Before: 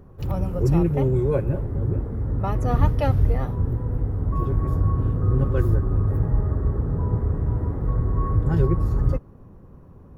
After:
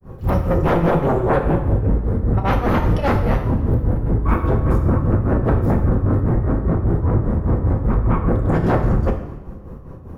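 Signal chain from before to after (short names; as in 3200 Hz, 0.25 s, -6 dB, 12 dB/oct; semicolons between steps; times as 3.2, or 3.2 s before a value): grains 0.229 s, grains 5/s, pitch spread up and down by 0 st; sine folder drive 15 dB, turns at -7.5 dBFS; two-slope reverb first 0.83 s, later 2.5 s, DRR 3.5 dB; gain -6 dB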